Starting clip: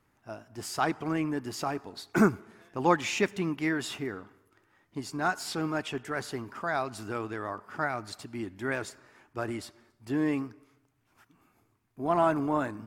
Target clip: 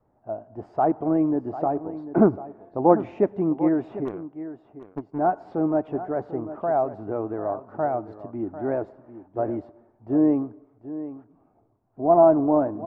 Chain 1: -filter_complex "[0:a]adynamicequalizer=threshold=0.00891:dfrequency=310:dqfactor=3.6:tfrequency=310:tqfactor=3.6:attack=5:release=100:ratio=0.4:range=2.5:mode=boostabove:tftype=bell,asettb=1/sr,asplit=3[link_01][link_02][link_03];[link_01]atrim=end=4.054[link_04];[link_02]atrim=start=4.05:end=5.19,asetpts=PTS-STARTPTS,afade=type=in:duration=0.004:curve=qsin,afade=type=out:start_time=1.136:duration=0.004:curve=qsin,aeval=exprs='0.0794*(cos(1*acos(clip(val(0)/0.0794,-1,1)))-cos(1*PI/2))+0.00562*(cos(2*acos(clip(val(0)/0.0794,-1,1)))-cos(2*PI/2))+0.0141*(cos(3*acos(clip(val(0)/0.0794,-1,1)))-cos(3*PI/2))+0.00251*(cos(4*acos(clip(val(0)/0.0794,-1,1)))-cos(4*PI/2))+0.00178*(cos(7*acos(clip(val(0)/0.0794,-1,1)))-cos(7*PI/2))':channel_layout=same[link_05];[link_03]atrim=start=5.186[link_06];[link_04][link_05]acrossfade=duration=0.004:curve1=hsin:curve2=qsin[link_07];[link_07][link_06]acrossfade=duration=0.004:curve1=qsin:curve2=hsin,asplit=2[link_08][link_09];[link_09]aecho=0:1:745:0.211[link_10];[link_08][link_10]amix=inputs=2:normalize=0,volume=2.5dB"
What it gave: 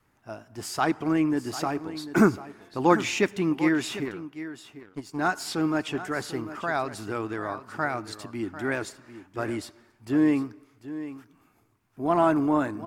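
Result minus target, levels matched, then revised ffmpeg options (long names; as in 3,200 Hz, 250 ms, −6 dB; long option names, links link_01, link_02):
500 Hz band −3.5 dB
-filter_complex "[0:a]adynamicequalizer=threshold=0.00891:dfrequency=310:dqfactor=3.6:tfrequency=310:tqfactor=3.6:attack=5:release=100:ratio=0.4:range=2.5:mode=boostabove:tftype=bell,lowpass=frequency=670:width_type=q:width=2.9,asettb=1/sr,asplit=3[link_01][link_02][link_03];[link_01]atrim=end=4.054[link_04];[link_02]atrim=start=4.05:end=5.19,asetpts=PTS-STARTPTS,afade=type=in:duration=0.004:curve=qsin,afade=type=out:start_time=1.136:duration=0.004:curve=qsin,aeval=exprs='0.0794*(cos(1*acos(clip(val(0)/0.0794,-1,1)))-cos(1*PI/2))+0.00562*(cos(2*acos(clip(val(0)/0.0794,-1,1)))-cos(2*PI/2))+0.0141*(cos(3*acos(clip(val(0)/0.0794,-1,1)))-cos(3*PI/2))+0.00251*(cos(4*acos(clip(val(0)/0.0794,-1,1)))-cos(4*PI/2))+0.00178*(cos(7*acos(clip(val(0)/0.0794,-1,1)))-cos(7*PI/2))':channel_layout=same[link_05];[link_03]atrim=start=5.186[link_06];[link_04][link_05]acrossfade=duration=0.004:curve1=hsin:curve2=qsin[link_07];[link_07][link_06]acrossfade=duration=0.004:curve1=qsin:curve2=hsin,asplit=2[link_08][link_09];[link_09]aecho=0:1:745:0.211[link_10];[link_08][link_10]amix=inputs=2:normalize=0,volume=2.5dB"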